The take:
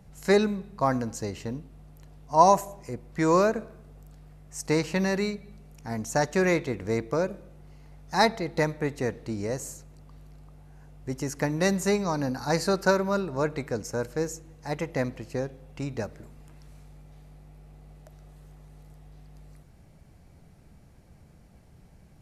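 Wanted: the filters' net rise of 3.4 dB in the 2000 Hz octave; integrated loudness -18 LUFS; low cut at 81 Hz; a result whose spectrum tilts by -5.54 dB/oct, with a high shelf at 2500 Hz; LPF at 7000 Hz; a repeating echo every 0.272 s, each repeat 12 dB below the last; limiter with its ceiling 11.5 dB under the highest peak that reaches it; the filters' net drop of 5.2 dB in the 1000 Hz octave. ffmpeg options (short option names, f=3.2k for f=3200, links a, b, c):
-af "highpass=81,lowpass=7k,equalizer=f=1k:t=o:g=-7.5,equalizer=f=2k:t=o:g=8,highshelf=f=2.5k:g=-4,alimiter=limit=-20.5dB:level=0:latency=1,aecho=1:1:272|544|816:0.251|0.0628|0.0157,volume=14.5dB"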